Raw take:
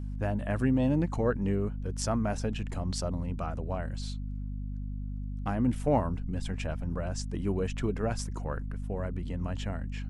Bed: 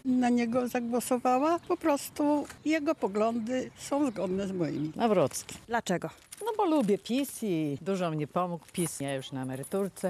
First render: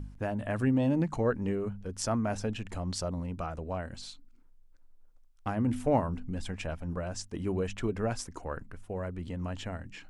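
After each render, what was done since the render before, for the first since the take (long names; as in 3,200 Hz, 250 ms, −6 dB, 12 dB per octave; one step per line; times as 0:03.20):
hum removal 50 Hz, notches 5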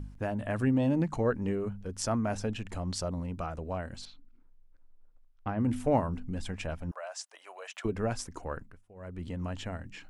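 0:04.05–0:05.60: high-frequency loss of the air 250 metres
0:06.91–0:07.85: Chebyshev high-pass filter 620 Hz, order 4
0:08.54–0:09.23: duck −17.5 dB, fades 0.28 s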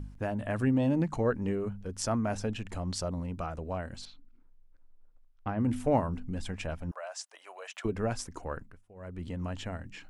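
no processing that can be heard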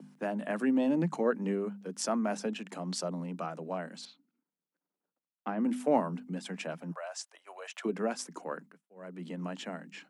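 downward expander −48 dBFS
Butterworth high-pass 160 Hz 96 dB per octave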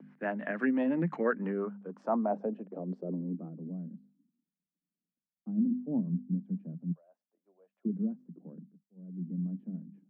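low-pass filter sweep 1,900 Hz → 200 Hz, 0:01.26–0:03.82
rotating-speaker cabinet horn 6 Hz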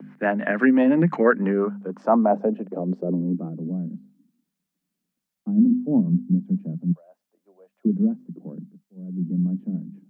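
level +11.5 dB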